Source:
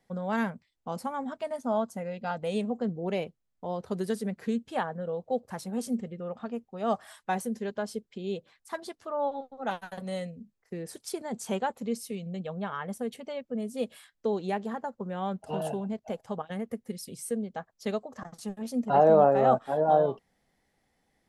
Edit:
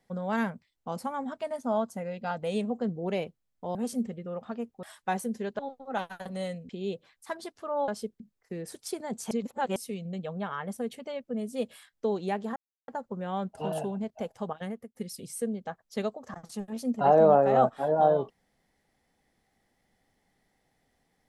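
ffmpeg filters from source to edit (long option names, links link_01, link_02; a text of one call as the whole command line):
ffmpeg -i in.wav -filter_complex "[0:a]asplit=11[link_01][link_02][link_03][link_04][link_05][link_06][link_07][link_08][link_09][link_10][link_11];[link_01]atrim=end=3.752[link_12];[link_02]atrim=start=5.688:end=6.772[link_13];[link_03]atrim=start=7.038:end=7.802[link_14];[link_04]atrim=start=9.308:end=10.412[link_15];[link_05]atrim=start=8.118:end=9.312[link_16];[link_06]atrim=start=7.798:end=8.122[link_17];[link_07]atrim=start=10.408:end=11.522[link_18];[link_08]atrim=start=11.518:end=11.972,asetpts=PTS-STARTPTS,areverse[link_19];[link_09]atrim=start=11.968:end=14.77,asetpts=PTS-STARTPTS,afade=type=out:start_time=2.798:duration=0.004:curve=hsin,apad=pad_dur=0.32[link_20];[link_10]atrim=start=14.77:end=16.84,asetpts=PTS-STARTPTS,afade=type=in:duration=0.004:curve=hsin,afade=type=out:start_time=1.76:duration=0.31[link_21];[link_11]atrim=start=16.84,asetpts=PTS-STARTPTS,afade=type=in:duration=0.004:curve=hsin[link_22];[link_12][link_13]acrossfade=duration=0.004:curve1=hsin:curve2=hsin[link_23];[link_23][link_14]acrossfade=duration=0.004:curve1=hsin:curve2=hsin[link_24];[link_24][link_15]acrossfade=duration=0.004:curve1=hsin:curve2=hsin[link_25];[link_25][link_16]acrossfade=duration=0.004:curve1=hsin:curve2=hsin[link_26];[link_26][link_17]acrossfade=duration=0.004:curve1=hsin:curve2=hsin[link_27];[link_27][link_18]acrossfade=duration=0.004:curve1=hsin:curve2=hsin[link_28];[link_28][link_19]acrossfade=duration=0.004:curve1=hsin:curve2=hsin[link_29];[link_20][link_21][link_22]concat=n=3:v=0:a=1[link_30];[link_29][link_30]acrossfade=duration=0.004:curve1=hsin:curve2=hsin" out.wav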